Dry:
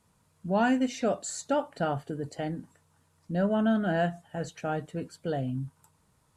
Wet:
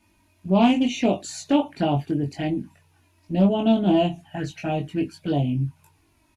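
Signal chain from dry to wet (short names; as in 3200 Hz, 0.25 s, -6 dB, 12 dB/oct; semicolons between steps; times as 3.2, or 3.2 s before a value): thirty-one-band EQ 315 Hz +8 dB, 500 Hz -11 dB, 1250 Hz -9 dB, 2500 Hz +10 dB, 8000 Hz -10 dB; envelope flanger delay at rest 3.3 ms, full sweep at -26.5 dBFS; doubler 21 ms -3 dB; Doppler distortion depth 0.16 ms; gain +7.5 dB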